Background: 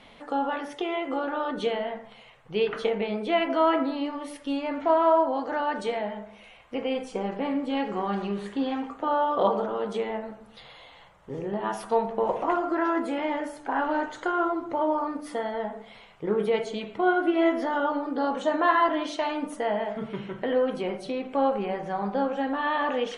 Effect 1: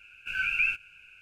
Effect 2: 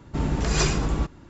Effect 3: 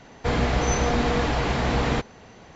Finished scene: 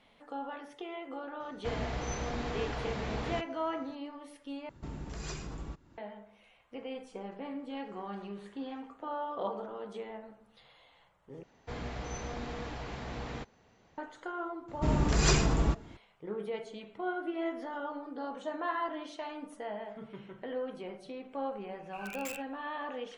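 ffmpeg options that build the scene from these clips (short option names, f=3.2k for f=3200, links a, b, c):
-filter_complex "[3:a]asplit=2[a][b];[2:a]asplit=2[c][d];[0:a]volume=-12.5dB[e];[c]acompressor=threshold=-34dB:ratio=2:attack=15:release=561:knee=1:detection=peak[f];[1:a]aeval=exprs='(mod(10.6*val(0)+1,2)-1)/10.6':c=same[g];[e]asplit=3[h][i][j];[h]atrim=end=4.694[k];[f]atrim=end=1.29,asetpts=PTS-STARTPTS,volume=-9.5dB[l];[i]atrim=start=5.976:end=11.434[m];[b]atrim=end=2.55,asetpts=PTS-STARTPTS,volume=-17dB[n];[j]atrim=start=13.976[o];[a]atrim=end=2.55,asetpts=PTS-STARTPTS,volume=-13.5dB,afade=t=in:d=0.004:c=hsin,afade=t=out:st=2.546:d=0.004:c=hsin,adelay=1400[p];[d]atrim=end=1.29,asetpts=PTS-STARTPTS,volume=-3dB,afade=t=in:d=0.004:c=hsin,afade=t=out:st=1.286:d=0.004:c=hsin,adelay=14680[q];[g]atrim=end=1.21,asetpts=PTS-STARTPTS,volume=-16dB,afade=t=in:d=0.004:c=hsin,afade=t=out:st=1.206:d=0.004:c=hsin,adelay=21660[r];[k][l]acrossfade=d=0.004:c1=hsin:c2=hsin[s];[s][m]acrossfade=d=0.004:c1=hsin:c2=hsin[t];[t][n]acrossfade=d=0.004:c1=hsin:c2=hsin[u];[u][o]acrossfade=d=0.004:c1=hsin:c2=hsin[v];[v][p][q][r]amix=inputs=4:normalize=0"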